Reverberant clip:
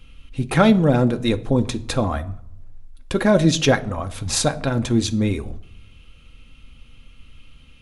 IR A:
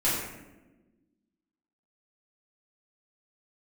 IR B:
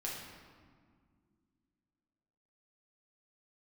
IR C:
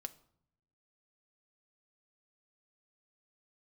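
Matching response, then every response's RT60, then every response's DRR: C; 1.1, 2.0, 0.65 seconds; −10.5, −4.5, 8.0 decibels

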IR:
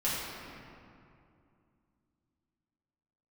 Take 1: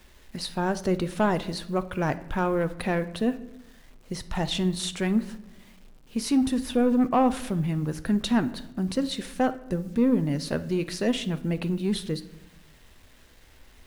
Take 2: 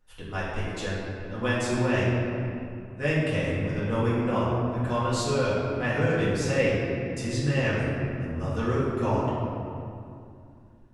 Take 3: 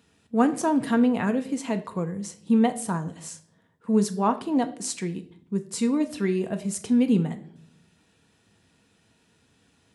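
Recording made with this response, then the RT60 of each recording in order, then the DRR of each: 2; 1.0 s, 2.5 s, non-exponential decay; 11.0, −9.5, 7.0 decibels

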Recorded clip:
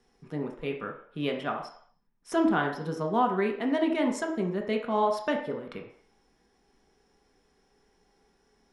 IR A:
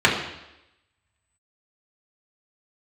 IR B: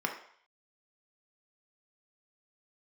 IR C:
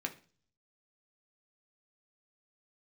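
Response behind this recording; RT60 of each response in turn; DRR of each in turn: B; 0.90, 0.55, 0.40 seconds; −4.5, 1.5, 2.5 decibels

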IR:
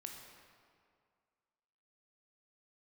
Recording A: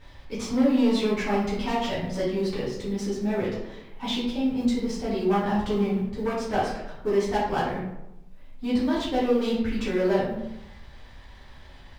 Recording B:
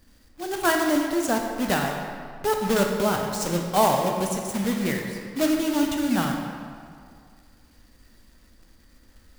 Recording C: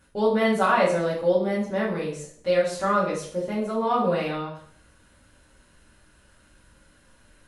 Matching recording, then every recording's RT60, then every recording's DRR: B; 0.90, 2.1, 0.55 seconds; −10.0, 1.5, −7.0 decibels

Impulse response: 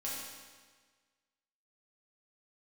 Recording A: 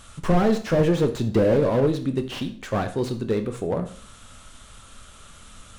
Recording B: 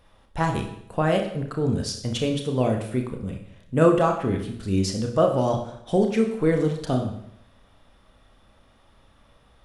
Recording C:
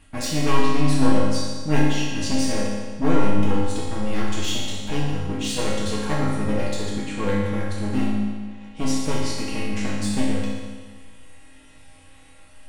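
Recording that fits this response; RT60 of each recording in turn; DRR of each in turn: C; 0.45, 0.70, 1.5 seconds; 7.0, 3.0, −7.0 decibels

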